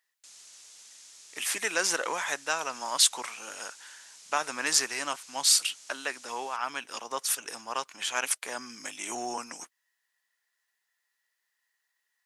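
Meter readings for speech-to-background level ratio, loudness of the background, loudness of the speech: 20.0 dB, −49.0 LKFS, −29.0 LKFS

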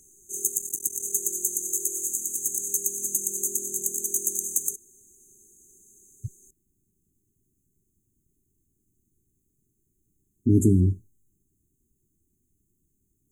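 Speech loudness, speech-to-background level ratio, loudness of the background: −22.0 LKFS, 4.0 dB, −26.0 LKFS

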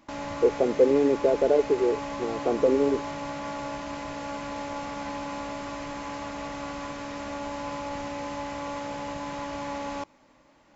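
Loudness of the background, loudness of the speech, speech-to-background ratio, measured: −35.0 LKFS, −24.0 LKFS, 11.0 dB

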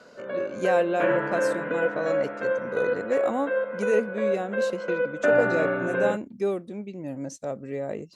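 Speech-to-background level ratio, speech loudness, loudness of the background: −3.5 dB, −30.5 LKFS, −27.0 LKFS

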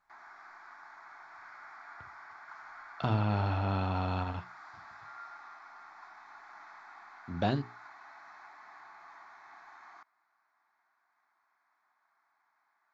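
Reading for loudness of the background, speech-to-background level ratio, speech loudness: −50.5 LKFS, 18.0 dB, −32.5 LKFS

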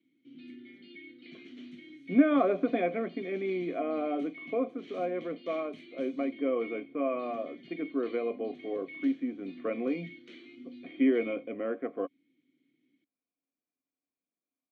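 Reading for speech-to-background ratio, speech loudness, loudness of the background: 16.5 dB, −32.0 LKFS, −48.5 LKFS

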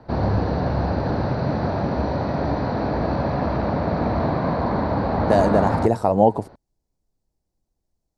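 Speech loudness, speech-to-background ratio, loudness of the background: −19.5 LKFS, 3.5 dB, −23.0 LKFS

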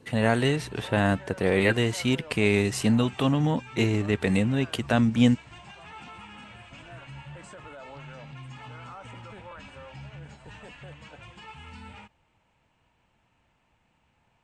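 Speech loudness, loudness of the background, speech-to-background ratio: −24.5 LKFS, −44.0 LKFS, 19.5 dB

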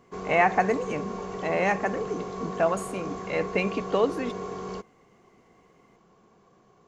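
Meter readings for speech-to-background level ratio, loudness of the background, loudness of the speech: 8.0 dB, −35.5 LKFS, −27.5 LKFS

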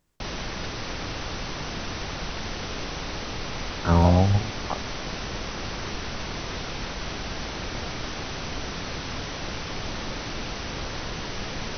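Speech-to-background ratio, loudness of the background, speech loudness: 11.0 dB, −32.5 LKFS, −21.5 LKFS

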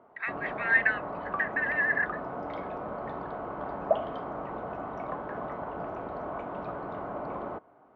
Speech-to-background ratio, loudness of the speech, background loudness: 8.0 dB, −28.0 LKFS, −36.0 LKFS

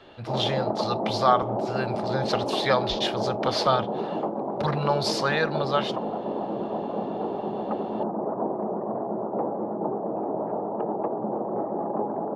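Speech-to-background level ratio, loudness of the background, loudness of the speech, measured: 2.5 dB, −29.5 LKFS, −27.0 LKFS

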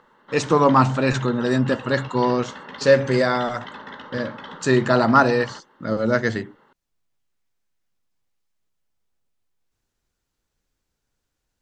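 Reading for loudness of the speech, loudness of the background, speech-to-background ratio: −20.5 LKFS, −38.0 LKFS, 17.5 dB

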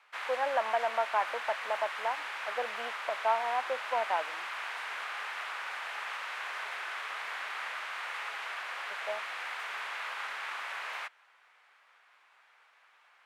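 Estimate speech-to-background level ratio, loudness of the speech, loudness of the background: 3.5 dB, −34.0 LKFS, −37.5 LKFS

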